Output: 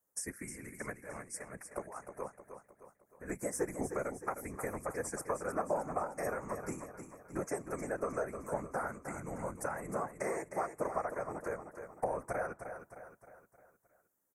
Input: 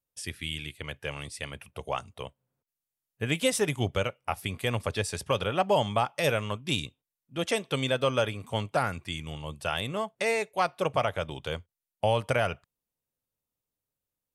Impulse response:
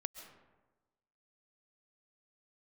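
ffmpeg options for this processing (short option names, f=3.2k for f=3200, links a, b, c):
-filter_complex "[0:a]highpass=200,equalizer=f=4.4k:w=4.8:g=12,acompressor=threshold=-43dB:ratio=4,asettb=1/sr,asplit=3[a][b][c];[a]atrim=end=0.934[d];[b]atrim=start=0.93:end=3.39,asetpts=PTS-STARTPTS,afade=t=in:d=0.004:c=qsin,afade=t=out:st=2.456:d=0.004:c=qsin,tremolo=f=4.6:d=0.81[e];[c]atrim=start=3.386[f];[d][e]acrossfade=d=0.004:c1=hsin:c2=qsin[g];[g][f]acrossfade=d=0.004:c1=qsin:c2=hsin,afftfilt=real='hypot(re,im)*cos(2*PI*random(0))':imag='hypot(re,im)*sin(2*PI*random(1))':win_size=512:overlap=0.75,asuperstop=centerf=3500:order=8:qfactor=0.81,aecho=1:1:309|618|927|1236|1545:0.355|0.17|0.0817|0.0392|0.0188,volume=13.5dB"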